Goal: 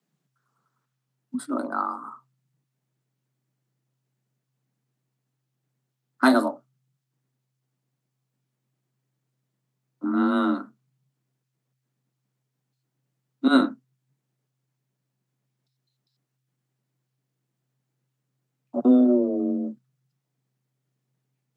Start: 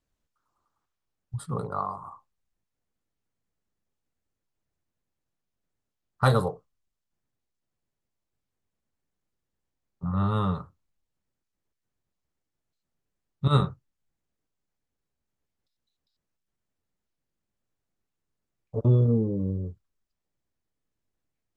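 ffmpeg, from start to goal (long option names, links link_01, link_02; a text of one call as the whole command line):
ffmpeg -i in.wav -af "equalizer=frequency=390:width=1.5:gain=-2.5,afreqshift=130,volume=3.5dB" out.wav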